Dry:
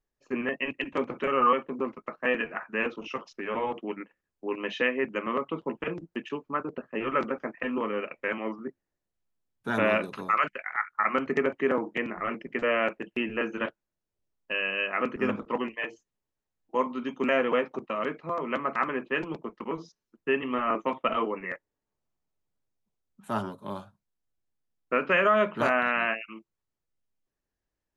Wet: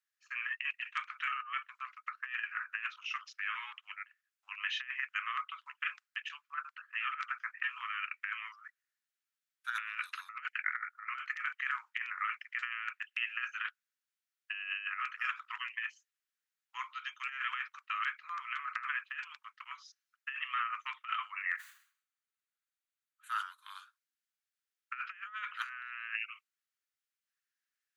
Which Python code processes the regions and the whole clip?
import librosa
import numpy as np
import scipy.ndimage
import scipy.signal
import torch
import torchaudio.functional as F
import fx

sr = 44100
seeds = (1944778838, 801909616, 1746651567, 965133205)

y = fx.chain(x, sr, fx.cheby_ripple_highpass(hz=310.0, ripple_db=3),
    fx.notch(hz=5300.0, q=5.9),
    fx.sustainer(db_per_s=110.0), at=(21.17, 23.56))
y = scipy.signal.sosfilt(scipy.signal.butter(8, 1300.0, 'highpass', fs=sr, output='sos'), y)
y = fx.high_shelf(y, sr, hz=3000.0, db=-4.0)
y = fx.over_compress(y, sr, threshold_db=-36.0, ratio=-0.5)